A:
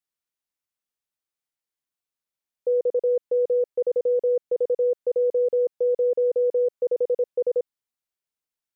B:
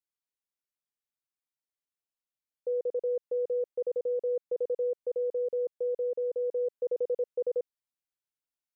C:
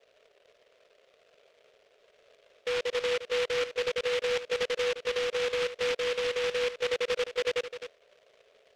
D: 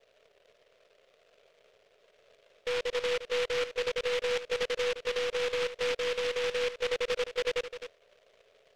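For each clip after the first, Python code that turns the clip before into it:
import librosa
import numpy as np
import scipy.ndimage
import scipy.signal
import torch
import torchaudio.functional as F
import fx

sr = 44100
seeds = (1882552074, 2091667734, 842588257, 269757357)

y1 = fx.rider(x, sr, range_db=10, speed_s=0.5)
y1 = y1 * librosa.db_to_amplitude(-8.0)
y2 = fx.dmg_noise_band(y1, sr, seeds[0], low_hz=410.0, high_hz=670.0, level_db=-63.0)
y2 = y2 + 10.0 ** (-10.5 / 20.0) * np.pad(y2, (int(259 * sr / 1000.0), 0))[:len(y2)]
y2 = fx.noise_mod_delay(y2, sr, seeds[1], noise_hz=2200.0, depth_ms=0.16)
y3 = np.where(y2 < 0.0, 10.0 ** (-3.0 / 20.0) * y2, y2)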